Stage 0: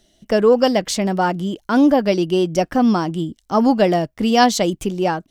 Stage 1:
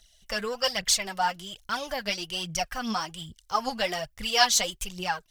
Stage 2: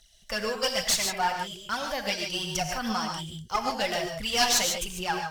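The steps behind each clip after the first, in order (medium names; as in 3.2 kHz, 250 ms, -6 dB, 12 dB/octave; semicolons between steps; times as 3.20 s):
amplifier tone stack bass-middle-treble 10-0-10; phaser 1.2 Hz, delay 4.6 ms, feedback 61%
one-sided clip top -24 dBFS; gated-style reverb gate 170 ms rising, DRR 3.5 dB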